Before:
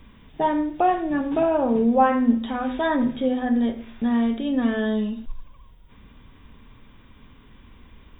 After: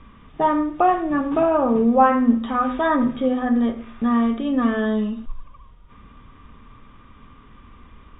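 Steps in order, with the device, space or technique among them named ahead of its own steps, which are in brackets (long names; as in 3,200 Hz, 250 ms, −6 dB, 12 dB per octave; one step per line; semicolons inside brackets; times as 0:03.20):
inside a cardboard box (low-pass filter 3,100 Hz 12 dB per octave; hollow resonant body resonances 1,200 Hz, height 16 dB, ringing for 40 ms)
level +2 dB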